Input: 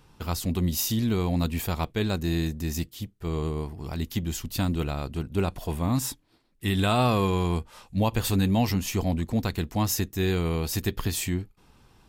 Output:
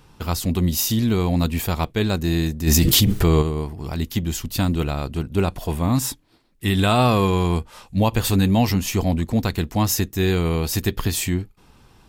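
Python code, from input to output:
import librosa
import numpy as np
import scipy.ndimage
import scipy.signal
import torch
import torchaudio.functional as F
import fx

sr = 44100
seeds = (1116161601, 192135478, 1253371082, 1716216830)

y = fx.env_flatten(x, sr, amount_pct=100, at=(2.66, 3.41), fade=0.02)
y = y * librosa.db_to_amplitude(5.5)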